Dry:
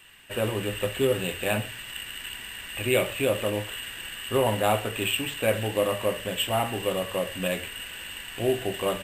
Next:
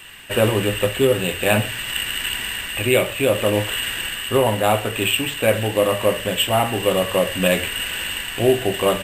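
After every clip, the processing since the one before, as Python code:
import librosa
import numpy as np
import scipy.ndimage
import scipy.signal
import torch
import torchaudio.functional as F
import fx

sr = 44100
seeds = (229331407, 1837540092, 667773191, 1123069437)

y = fx.rider(x, sr, range_db=4, speed_s=0.5)
y = y * 10.0 ** (8.5 / 20.0)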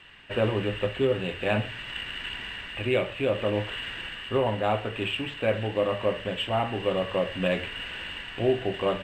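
y = fx.air_absorb(x, sr, metres=200.0)
y = y * 10.0 ** (-7.0 / 20.0)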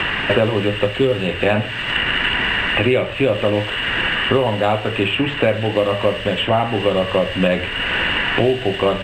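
y = fx.band_squash(x, sr, depth_pct=100)
y = y * 10.0 ** (8.5 / 20.0)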